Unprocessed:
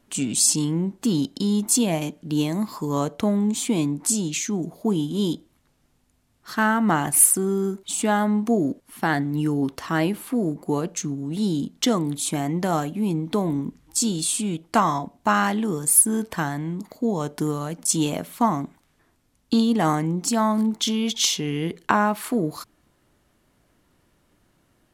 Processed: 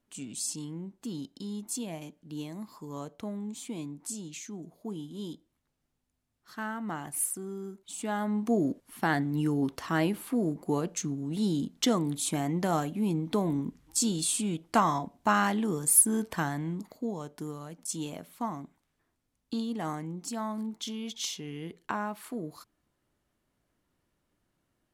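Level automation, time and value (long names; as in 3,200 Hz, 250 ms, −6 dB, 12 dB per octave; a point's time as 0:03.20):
0:07.80 −15.5 dB
0:08.59 −5 dB
0:16.74 −5 dB
0:17.27 −13.5 dB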